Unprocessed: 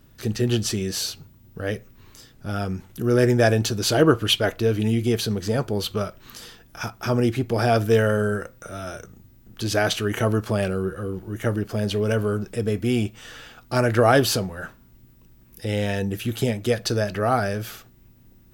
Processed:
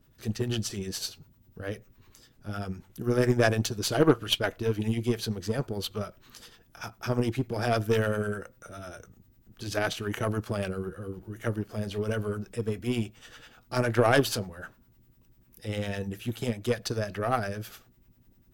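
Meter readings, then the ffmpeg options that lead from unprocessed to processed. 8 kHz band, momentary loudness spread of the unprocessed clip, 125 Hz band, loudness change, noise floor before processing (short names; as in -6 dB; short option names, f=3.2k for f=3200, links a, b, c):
-7.5 dB, 16 LU, -7.0 dB, -6.5 dB, -53 dBFS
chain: -filter_complex "[0:a]acrossover=split=610[a][b];[a]aeval=exprs='val(0)*(1-0.7/2+0.7/2*cos(2*PI*10*n/s))':c=same[c];[b]aeval=exprs='val(0)*(1-0.7/2-0.7/2*cos(2*PI*10*n/s))':c=same[d];[c][d]amix=inputs=2:normalize=0,aeval=exprs='0.501*(cos(1*acos(clip(val(0)/0.501,-1,1)))-cos(1*PI/2))+0.0447*(cos(4*acos(clip(val(0)/0.501,-1,1)))-cos(4*PI/2))+0.0158*(cos(6*acos(clip(val(0)/0.501,-1,1)))-cos(6*PI/2))+0.0251*(cos(7*acos(clip(val(0)/0.501,-1,1)))-cos(7*PI/2))+0.00631*(cos(8*acos(clip(val(0)/0.501,-1,1)))-cos(8*PI/2))':c=same,volume=-1.5dB"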